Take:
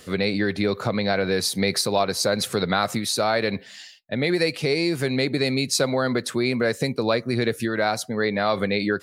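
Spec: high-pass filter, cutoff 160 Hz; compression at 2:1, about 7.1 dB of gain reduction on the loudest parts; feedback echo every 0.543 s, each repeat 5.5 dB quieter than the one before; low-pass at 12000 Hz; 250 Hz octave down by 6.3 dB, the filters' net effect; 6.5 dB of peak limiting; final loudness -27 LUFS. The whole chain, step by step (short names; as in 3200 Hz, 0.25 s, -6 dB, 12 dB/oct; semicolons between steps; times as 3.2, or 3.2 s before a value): HPF 160 Hz; LPF 12000 Hz; bell 250 Hz -7.5 dB; compressor 2:1, threshold -31 dBFS; limiter -21 dBFS; feedback echo 0.543 s, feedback 53%, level -5.5 dB; gain +4 dB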